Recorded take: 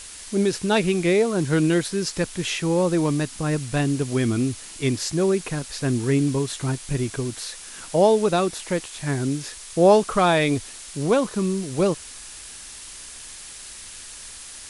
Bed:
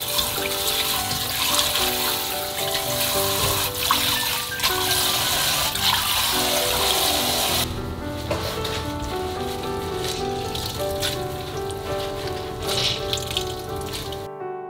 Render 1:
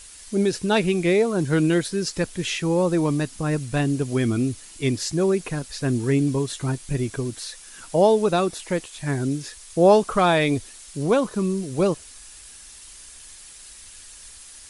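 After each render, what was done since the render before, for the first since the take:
broadband denoise 7 dB, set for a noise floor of −40 dBFS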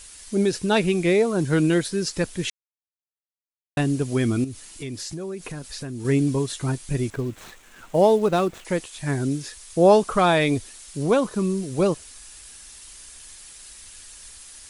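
0:02.50–0:03.77: silence
0:04.44–0:06.05: downward compressor 5 to 1, threshold −30 dBFS
0:07.10–0:08.65: running median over 9 samples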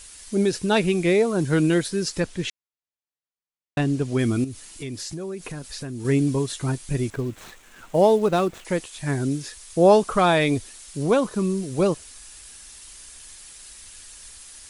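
0:02.20–0:04.19: high-frequency loss of the air 52 metres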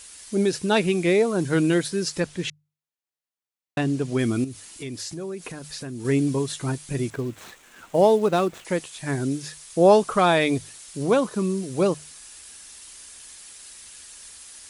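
high-pass filter 110 Hz 6 dB per octave
mains-hum notches 50/100/150 Hz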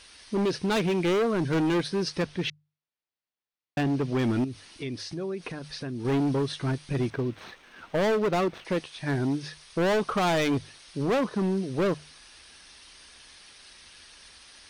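Savitzky-Golay smoothing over 15 samples
gain into a clipping stage and back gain 22 dB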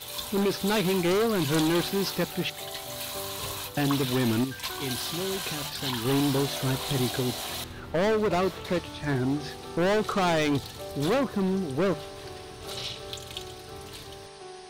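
mix in bed −13 dB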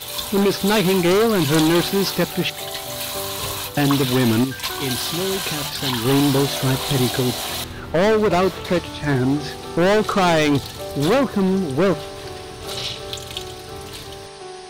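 level +8 dB

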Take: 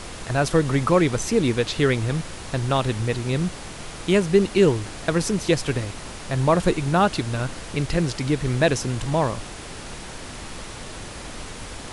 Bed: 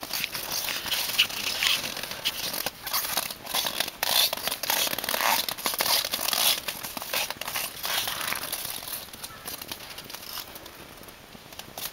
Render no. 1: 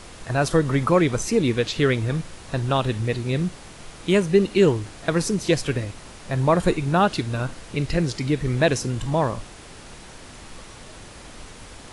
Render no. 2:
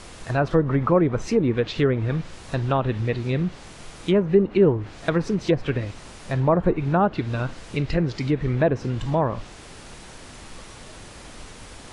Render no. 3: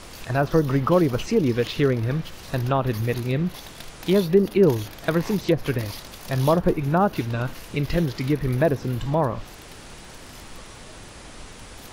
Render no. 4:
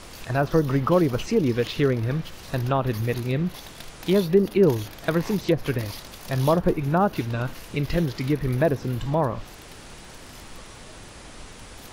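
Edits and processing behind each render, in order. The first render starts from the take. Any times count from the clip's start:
noise reduction from a noise print 6 dB
treble cut that deepens with the level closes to 1,100 Hz, closed at −15 dBFS
mix in bed −15.5 dB
level −1 dB

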